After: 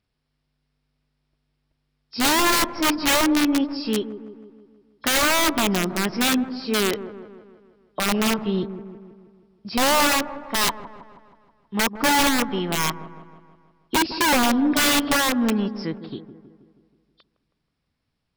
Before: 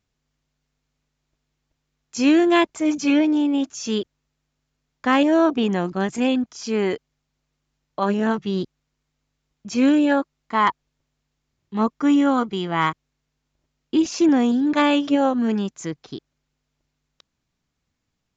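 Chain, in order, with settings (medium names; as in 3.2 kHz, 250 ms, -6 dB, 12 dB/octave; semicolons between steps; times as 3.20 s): knee-point frequency compression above 3.1 kHz 1.5:1; integer overflow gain 14.5 dB; feedback echo behind a low-pass 160 ms, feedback 55%, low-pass 1 kHz, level -11 dB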